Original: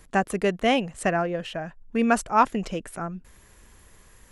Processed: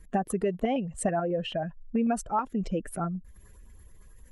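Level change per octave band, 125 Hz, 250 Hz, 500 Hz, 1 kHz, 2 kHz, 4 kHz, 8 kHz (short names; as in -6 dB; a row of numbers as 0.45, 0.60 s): -0.5, -2.5, -4.0, -7.0, -13.0, -8.0, -2.0 dB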